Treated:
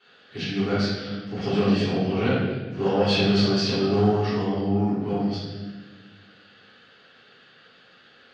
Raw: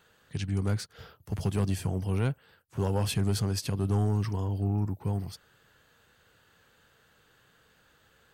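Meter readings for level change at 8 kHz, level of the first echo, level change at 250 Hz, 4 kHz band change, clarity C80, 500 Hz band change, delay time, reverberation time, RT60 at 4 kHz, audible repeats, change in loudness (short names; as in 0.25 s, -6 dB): -4.0 dB, none, +10.5 dB, +12.0 dB, 1.5 dB, +12.5 dB, none, 1.3 s, 1.0 s, none, +6.5 dB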